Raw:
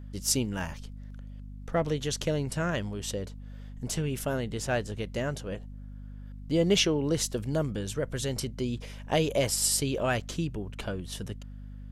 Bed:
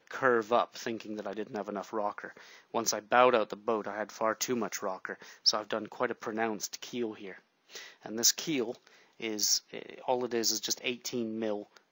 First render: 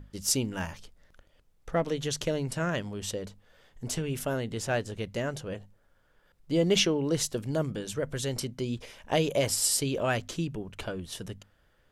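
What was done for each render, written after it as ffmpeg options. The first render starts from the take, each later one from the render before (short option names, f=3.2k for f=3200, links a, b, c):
-af "bandreject=f=50:t=h:w=6,bandreject=f=100:t=h:w=6,bandreject=f=150:t=h:w=6,bandreject=f=200:t=h:w=6,bandreject=f=250:t=h:w=6"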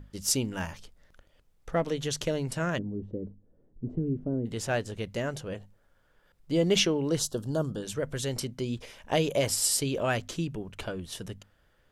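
-filter_complex "[0:a]asplit=3[a][b][c];[a]afade=t=out:st=2.77:d=0.02[d];[b]lowpass=f=310:t=q:w=1.9,afade=t=in:st=2.77:d=0.02,afade=t=out:st=4.45:d=0.02[e];[c]afade=t=in:st=4.45:d=0.02[f];[d][e][f]amix=inputs=3:normalize=0,asettb=1/sr,asplit=3[g][h][i];[g]atrim=end=7.194[j];[h]atrim=start=7.19:end=7.83,asetpts=PTS-STARTPTS,afade=t=in:d=0.004:c=qsin,afade=t=out:st=0.636:d=0.004:c=qsin,asuperstop=centerf=2200:order=4:qfactor=1.4[k];[i]atrim=start=7.826[l];[j][k]acrossfade=d=0.004:c1=hsin:c2=qsin[m];[m][l]acrossfade=d=0.004:c1=qsin:c2=hsin"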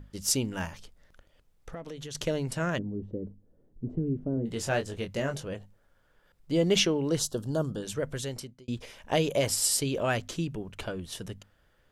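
-filter_complex "[0:a]asettb=1/sr,asplit=3[a][b][c];[a]atrim=end=0.684[d];[b]atrim=start=0.68:end=2.15,asetpts=PTS-STARTPTS,afade=t=in:d=0.004:c=qsin,afade=t=out:st=1.466:d=0.004:c=qsin,acompressor=threshold=-37dB:ratio=6:attack=3.2:release=140:knee=1:detection=peak[e];[c]atrim=start=2.146[f];[d][e]acrossfade=d=0.004:c1=hsin:c2=qsin[g];[g][f]acrossfade=d=0.004:c1=qsin:c2=hsin,asettb=1/sr,asplit=3[h][i][j];[h]atrim=end=4.354[k];[i]atrim=start=4.35:end=5.47,asetpts=PTS-STARTPTS,afade=t=in:d=0.004:c=qsin,afade=t=out:st=1.116:d=0.004:c=qsin,asplit=2[l][m];[m]adelay=22,volume=-6.5dB[n];[l][n]amix=inputs=2:normalize=0,atrim=end_sample=49392[o];[j]atrim=start=5.466[p];[k][o]acrossfade=d=0.004:c1=hsin:c2=qsin[q];[q][p]acrossfade=d=0.004:c1=qsin:c2=hsin,asplit=2[r][s];[r]atrim=end=8.68,asetpts=PTS-STARTPTS,afade=t=out:st=8.08:d=0.6[t];[s]atrim=start=8.68,asetpts=PTS-STARTPTS,afade=t=in:d=0.004:c=hsin[u];[t][u]concat=n=2:v=0:a=1"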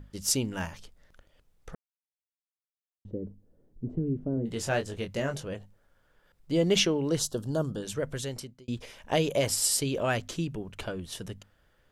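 -filter_complex "[0:a]asplit=3[a][b][c];[a]atrim=end=1.75,asetpts=PTS-STARTPTS,afade=t=out:st=1.746:d=0.004:c=hsin[d];[b]atrim=start=1.75:end=3.05,asetpts=PTS-STARTPTS,volume=0[e];[c]atrim=start=3.05,asetpts=PTS-STARTPTS,afade=t=in:d=0.004:c=hsin[f];[d][e][f]concat=n=3:v=0:a=1"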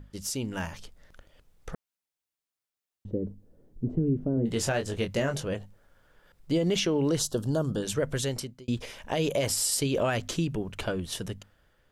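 -af "alimiter=limit=-23dB:level=0:latency=1:release=103,dynaudnorm=f=210:g=7:m=5dB"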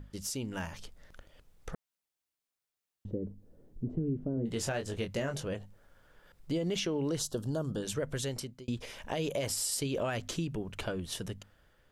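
-af "acompressor=threshold=-41dB:ratio=1.5"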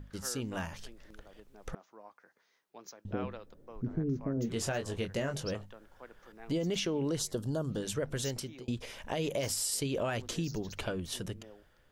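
-filter_complex "[1:a]volume=-20dB[a];[0:a][a]amix=inputs=2:normalize=0"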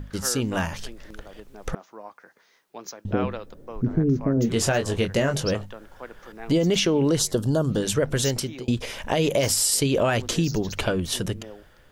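-af "volume=11.5dB"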